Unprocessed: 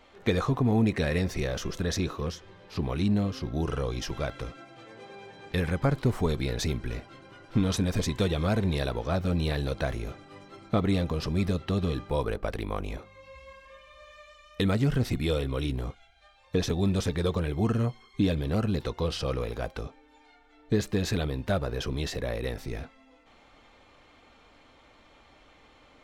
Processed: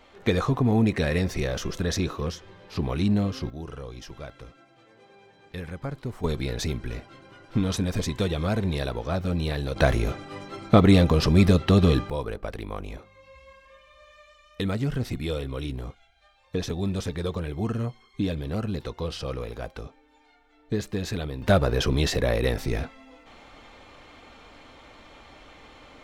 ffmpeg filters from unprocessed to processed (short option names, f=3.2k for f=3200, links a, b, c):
-af "asetnsamples=n=441:p=0,asendcmd='3.5 volume volume -8dB;6.24 volume volume 0.5dB;9.76 volume volume 9.5dB;12.1 volume volume -2dB;21.42 volume volume 8dB',volume=2.5dB"